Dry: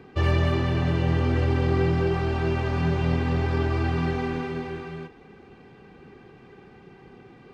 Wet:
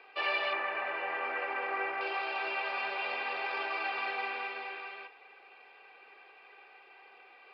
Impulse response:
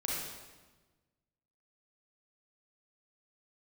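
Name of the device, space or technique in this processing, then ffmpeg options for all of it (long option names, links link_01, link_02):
musical greeting card: -filter_complex "[0:a]asettb=1/sr,asplit=3[link_01][link_02][link_03];[link_01]atrim=end=0.534[link_04];[link_02]atrim=start=0.53:end=2.01,asetpts=PTS-STARTPTS,afade=type=in:duration=0.004:curve=qsin,afade=type=out:start_time=1.476:duration=0.004:curve=qsin,highshelf=frequency=2700:width_type=q:width=1.5:gain=-11.5[link_05];[link_03]atrim=start=2.006[link_06];[link_04][link_05]acrossfade=duration=0.004:curve1=hsin:curve2=qsin[link_07];[link_07][link_06]acrossfade=duration=0.004:curve1=qsin:curve2=hsin,aresample=11025,aresample=44100,highpass=frequency=600:width=0.5412,highpass=frequency=600:width=1.3066,equalizer=frequency=2500:width_type=o:width=0.23:gain=12,volume=-2dB"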